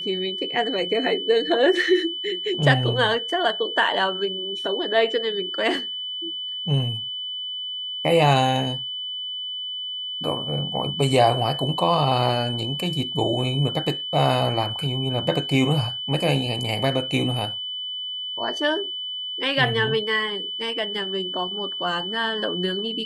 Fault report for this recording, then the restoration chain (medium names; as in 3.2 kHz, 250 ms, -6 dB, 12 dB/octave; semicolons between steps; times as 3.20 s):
whine 3 kHz -28 dBFS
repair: band-stop 3 kHz, Q 30